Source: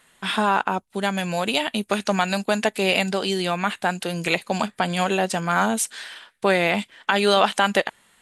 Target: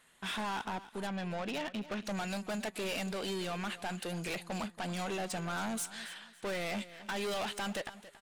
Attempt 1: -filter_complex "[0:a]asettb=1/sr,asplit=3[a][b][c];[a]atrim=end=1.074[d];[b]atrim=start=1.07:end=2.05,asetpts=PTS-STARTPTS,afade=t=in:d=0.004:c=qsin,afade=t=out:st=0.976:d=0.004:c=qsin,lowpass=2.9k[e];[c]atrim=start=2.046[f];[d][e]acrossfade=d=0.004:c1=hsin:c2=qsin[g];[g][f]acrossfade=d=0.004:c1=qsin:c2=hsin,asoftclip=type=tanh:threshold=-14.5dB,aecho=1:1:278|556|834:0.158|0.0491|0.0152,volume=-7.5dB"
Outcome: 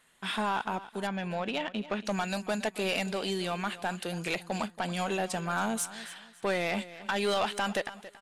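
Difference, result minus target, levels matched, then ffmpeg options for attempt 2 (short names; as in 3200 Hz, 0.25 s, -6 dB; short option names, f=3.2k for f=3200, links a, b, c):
soft clip: distortion -8 dB
-filter_complex "[0:a]asettb=1/sr,asplit=3[a][b][c];[a]atrim=end=1.074[d];[b]atrim=start=1.07:end=2.05,asetpts=PTS-STARTPTS,afade=t=in:d=0.004:c=qsin,afade=t=out:st=0.976:d=0.004:c=qsin,lowpass=2.9k[e];[c]atrim=start=2.046[f];[d][e]acrossfade=d=0.004:c1=hsin:c2=qsin[g];[g][f]acrossfade=d=0.004:c1=qsin:c2=hsin,asoftclip=type=tanh:threshold=-26dB,aecho=1:1:278|556|834:0.158|0.0491|0.0152,volume=-7.5dB"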